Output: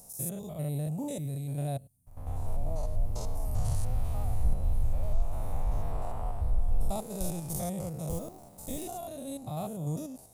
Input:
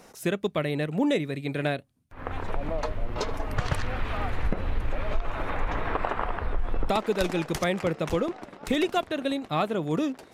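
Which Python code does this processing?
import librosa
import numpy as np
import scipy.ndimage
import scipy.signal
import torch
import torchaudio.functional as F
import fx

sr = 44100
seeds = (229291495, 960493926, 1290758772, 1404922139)

y = fx.spec_steps(x, sr, hold_ms=100)
y = fx.quant_companded(y, sr, bits=8, at=(8.09, 8.85))
y = fx.curve_eq(y, sr, hz=(130.0, 350.0, 720.0, 1600.0, 3200.0, 10000.0), db=(0, -17, -7, -27, -19, 11))
y = y * librosa.db_to_amplitude(3.0)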